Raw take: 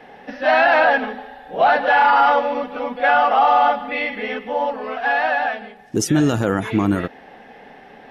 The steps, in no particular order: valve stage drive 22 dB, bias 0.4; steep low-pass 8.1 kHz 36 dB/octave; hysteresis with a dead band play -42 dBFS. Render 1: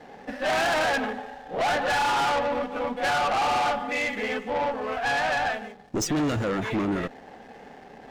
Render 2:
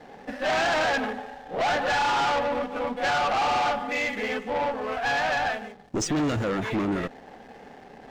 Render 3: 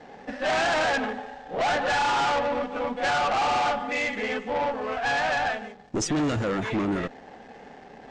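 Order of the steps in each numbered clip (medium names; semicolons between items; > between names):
steep low-pass > hysteresis with a dead band > valve stage; valve stage > steep low-pass > hysteresis with a dead band; hysteresis with a dead band > valve stage > steep low-pass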